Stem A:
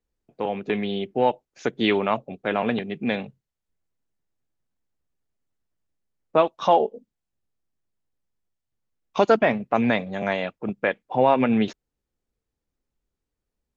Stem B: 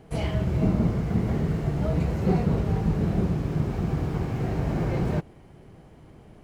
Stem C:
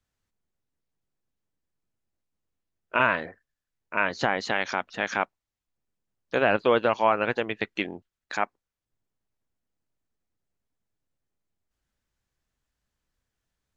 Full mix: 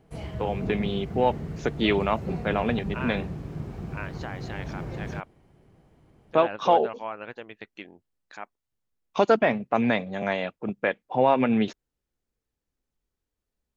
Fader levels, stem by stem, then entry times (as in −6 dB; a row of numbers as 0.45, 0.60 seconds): −2.0, −9.0, −13.0 decibels; 0.00, 0.00, 0.00 seconds